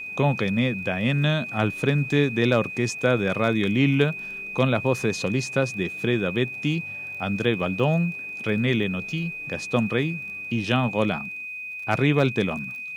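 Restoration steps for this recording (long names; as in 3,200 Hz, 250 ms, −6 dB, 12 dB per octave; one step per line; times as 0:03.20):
clipped peaks rebuilt −8 dBFS
click removal
notch filter 2,500 Hz, Q 30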